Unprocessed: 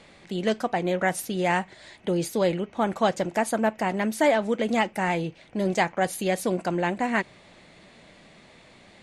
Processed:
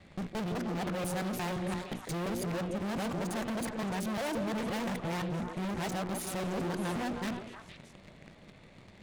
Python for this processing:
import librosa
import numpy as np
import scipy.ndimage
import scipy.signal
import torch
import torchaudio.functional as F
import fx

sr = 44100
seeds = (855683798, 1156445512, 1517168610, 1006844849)

p1 = fx.local_reverse(x, sr, ms=174.0)
p2 = fx.bass_treble(p1, sr, bass_db=12, treble_db=-5)
p3 = fx.hum_notches(p2, sr, base_hz=60, count=6)
p4 = fx.fuzz(p3, sr, gain_db=32.0, gate_db=-41.0)
p5 = p3 + (p4 * librosa.db_to_amplitude(-7.0))
p6 = fx.tube_stage(p5, sr, drive_db=29.0, bias=0.6)
p7 = p6 + fx.echo_stepped(p6, sr, ms=155, hz=430.0, octaves=1.4, feedback_pct=70, wet_db=-1.5, dry=0)
y = p7 * librosa.db_to_amplitude(-4.5)